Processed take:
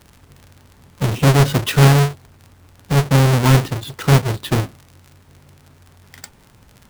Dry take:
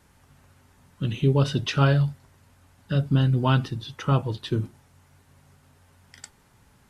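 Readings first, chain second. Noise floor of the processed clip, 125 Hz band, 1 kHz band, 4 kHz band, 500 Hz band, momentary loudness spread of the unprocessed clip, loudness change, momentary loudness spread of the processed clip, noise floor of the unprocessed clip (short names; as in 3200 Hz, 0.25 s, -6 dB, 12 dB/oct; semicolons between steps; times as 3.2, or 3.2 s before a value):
-50 dBFS, +8.0 dB, +9.0 dB, +9.0 dB, +8.5 dB, 10 LU, +8.5 dB, 11 LU, -60 dBFS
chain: half-waves squared off; crackle 39/s -34 dBFS; gain +3.5 dB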